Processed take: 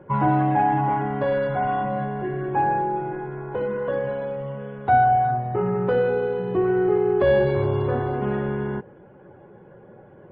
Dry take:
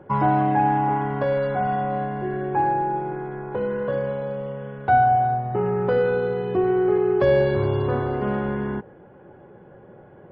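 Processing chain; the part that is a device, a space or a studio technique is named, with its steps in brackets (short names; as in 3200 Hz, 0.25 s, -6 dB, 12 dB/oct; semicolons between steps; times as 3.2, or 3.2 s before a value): clip after many re-uploads (LPF 4100 Hz 24 dB/oct; bin magnitudes rounded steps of 15 dB)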